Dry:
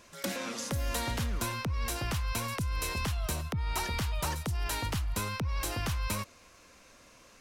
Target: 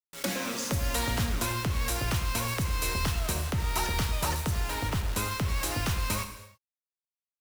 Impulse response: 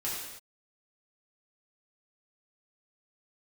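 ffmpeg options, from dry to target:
-filter_complex "[0:a]asettb=1/sr,asplit=3[a][b][c];[a]atrim=end=4.604[d];[b]atrim=start=4.6:end=5.08,asetpts=PTS-STARTPTS,afade=t=in:d=0.004:c=qsin,afade=t=out:st=0.476:d=0.004:c=qsin,highshelf=f=3.8k:g=-10[e];[c]atrim=start=5.076[f];[d][e]acrossfade=d=0.004:c1=hsin:c2=qsin[g];[g][f]acrossfade=d=0.004:c1=qsin:c2=hsin,acrusher=bits=6:mix=0:aa=0.000001,asplit=2[h][i];[1:a]atrim=start_sample=2205[j];[i][j]afir=irnorm=-1:irlink=0,volume=-8.5dB[k];[h][k]amix=inputs=2:normalize=0,volume=1dB"

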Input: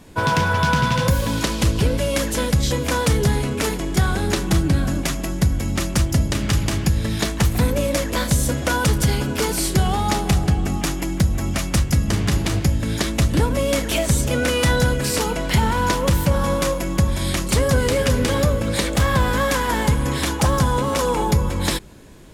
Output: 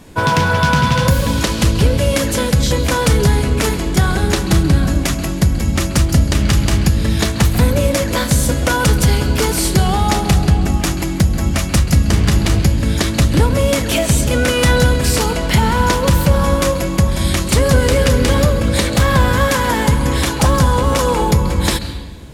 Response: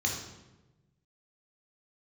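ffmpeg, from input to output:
-filter_complex "[0:a]asplit=2[a][b];[1:a]atrim=start_sample=2205,asetrate=29106,aresample=44100,adelay=133[c];[b][c]afir=irnorm=-1:irlink=0,volume=-22dB[d];[a][d]amix=inputs=2:normalize=0,volume=4.5dB"

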